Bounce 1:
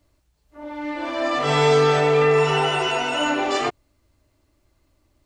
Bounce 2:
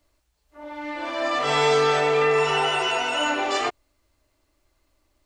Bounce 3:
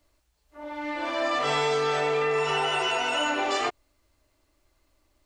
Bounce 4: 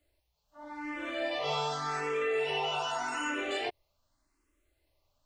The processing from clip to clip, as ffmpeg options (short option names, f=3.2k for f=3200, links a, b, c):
-af "equalizer=f=130:w=0.47:g=-10.5"
-af "acompressor=threshold=-22dB:ratio=6"
-filter_complex "[0:a]asplit=2[a][b];[b]afreqshift=0.85[c];[a][c]amix=inputs=2:normalize=1,volume=-4dB"